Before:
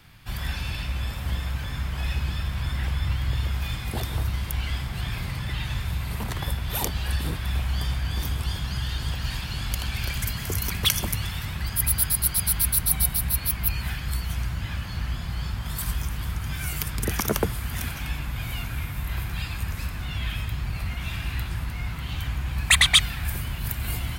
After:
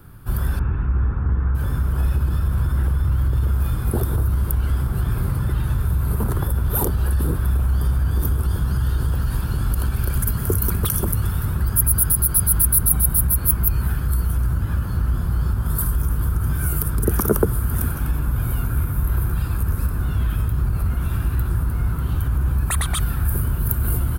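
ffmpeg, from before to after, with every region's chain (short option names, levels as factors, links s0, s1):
-filter_complex "[0:a]asettb=1/sr,asplit=3[s0][s1][s2];[s0]atrim=end=0.594[s3];[s1]atrim=start=0.59:end=1.55,asetpts=PTS-STARTPTS,afade=t=in:d=0.004:c=qsin,afade=t=out:st=0.956:d=0.004:c=qsin,lowpass=f=2100:w=0.5412,lowpass=f=2100:w=1.3066,equalizer=f=590:t=o:w=0.32:g=-10.5[s4];[s2]atrim=start=1.546[s5];[s3][s4]acrossfade=d=0.004:c1=hsin:c2=qsin[s6];[s6][s5]acrossfade=d=0.004:c1=qsin:c2=hsin,bass=f=250:g=13,treble=f=4000:g=-1,alimiter=limit=0.299:level=0:latency=1:release=44,firequalizer=gain_entry='entry(160,0);entry(390,14);entry(700,4);entry(1400,10);entry(2000,-8);entry(3800,-6);entry(7000,-2);entry(10000,12)':delay=0.05:min_phase=1,volume=0.75"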